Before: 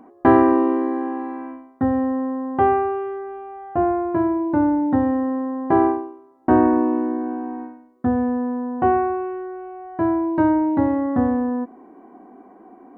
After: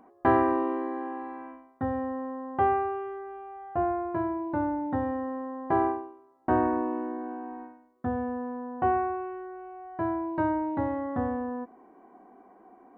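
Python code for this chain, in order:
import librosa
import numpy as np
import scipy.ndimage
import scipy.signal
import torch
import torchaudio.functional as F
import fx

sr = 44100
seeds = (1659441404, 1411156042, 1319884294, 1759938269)

y = fx.peak_eq(x, sr, hz=270.0, db=-7.0, octaves=1.1)
y = y * 10.0 ** (-5.5 / 20.0)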